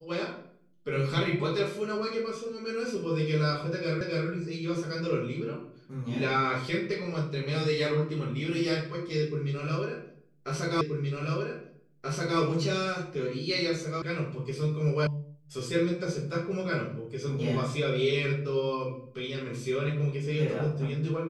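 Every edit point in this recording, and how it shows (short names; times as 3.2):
4.01 repeat of the last 0.27 s
10.81 repeat of the last 1.58 s
14.02 sound cut off
15.07 sound cut off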